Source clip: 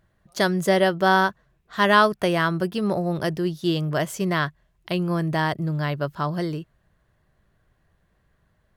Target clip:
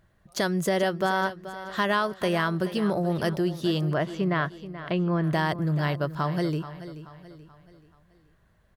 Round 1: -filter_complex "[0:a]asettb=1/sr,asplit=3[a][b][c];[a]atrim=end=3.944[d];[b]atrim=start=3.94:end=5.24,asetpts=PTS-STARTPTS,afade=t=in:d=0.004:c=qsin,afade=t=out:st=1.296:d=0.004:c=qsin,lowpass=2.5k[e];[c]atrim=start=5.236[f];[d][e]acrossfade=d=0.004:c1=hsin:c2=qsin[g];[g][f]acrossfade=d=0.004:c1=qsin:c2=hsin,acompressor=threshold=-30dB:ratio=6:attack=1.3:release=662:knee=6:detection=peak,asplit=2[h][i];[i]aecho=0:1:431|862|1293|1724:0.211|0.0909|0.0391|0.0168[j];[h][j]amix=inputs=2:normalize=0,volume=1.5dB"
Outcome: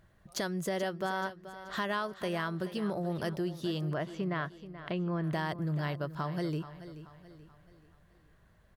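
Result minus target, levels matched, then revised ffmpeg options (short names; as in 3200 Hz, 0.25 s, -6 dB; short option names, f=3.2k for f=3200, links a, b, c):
compressor: peak gain reduction +9 dB
-filter_complex "[0:a]asettb=1/sr,asplit=3[a][b][c];[a]atrim=end=3.944[d];[b]atrim=start=3.94:end=5.24,asetpts=PTS-STARTPTS,afade=t=in:d=0.004:c=qsin,afade=t=out:st=1.296:d=0.004:c=qsin,lowpass=2.5k[e];[c]atrim=start=5.236[f];[d][e]acrossfade=d=0.004:c1=hsin:c2=qsin[g];[g][f]acrossfade=d=0.004:c1=qsin:c2=hsin,acompressor=threshold=-19.5dB:ratio=6:attack=1.3:release=662:knee=6:detection=peak,asplit=2[h][i];[i]aecho=0:1:431|862|1293|1724:0.211|0.0909|0.0391|0.0168[j];[h][j]amix=inputs=2:normalize=0,volume=1.5dB"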